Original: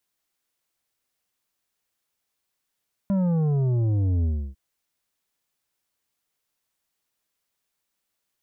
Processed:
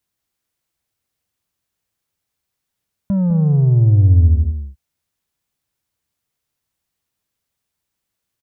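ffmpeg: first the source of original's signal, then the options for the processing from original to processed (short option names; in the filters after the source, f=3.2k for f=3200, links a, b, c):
-f lavfi -i "aevalsrc='0.0944*clip((1.45-t)/0.31,0,1)*tanh(2.66*sin(2*PI*200*1.45/log(65/200)*(exp(log(65/200)*t/1.45)-1)))/tanh(2.66)':d=1.45:s=44100"
-filter_complex "[0:a]equalizer=f=82:t=o:w=2.4:g=12,asplit=2[a][b];[b]aecho=0:1:203:0.376[c];[a][c]amix=inputs=2:normalize=0"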